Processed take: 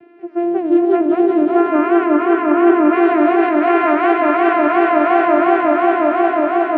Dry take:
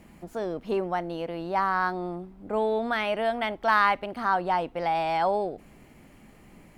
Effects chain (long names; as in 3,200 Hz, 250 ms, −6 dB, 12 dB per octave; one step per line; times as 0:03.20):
echo that builds up and dies away 91 ms, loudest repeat 8, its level −10.5 dB
in parallel at −1.5 dB: downward compressor, threshold −27 dBFS, peak gain reduction 11 dB
on the sum: channel vocoder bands 8, saw 345 Hz
low-pass filter 2,700 Hz 24 dB per octave
parametric band 1,100 Hz −8.5 dB 0.2 octaves
feedback echo with a swinging delay time 186 ms, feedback 79%, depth 213 cents, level −3 dB
level +6 dB